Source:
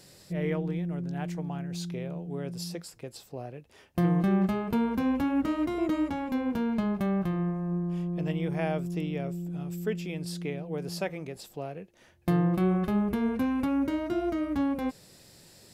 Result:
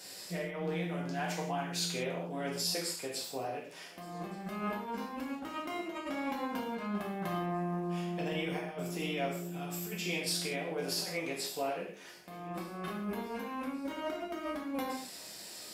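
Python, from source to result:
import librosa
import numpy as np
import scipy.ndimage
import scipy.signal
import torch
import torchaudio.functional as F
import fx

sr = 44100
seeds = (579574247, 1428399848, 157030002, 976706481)

y = fx.highpass(x, sr, hz=740.0, slope=6)
y = fx.over_compress(y, sr, threshold_db=-40.0, ratio=-0.5)
y = fx.echo_feedback(y, sr, ms=1172, feedback_pct=59, wet_db=-24)
y = fx.rev_gated(y, sr, seeds[0], gate_ms=210, shape='falling', drr_db=-4.0)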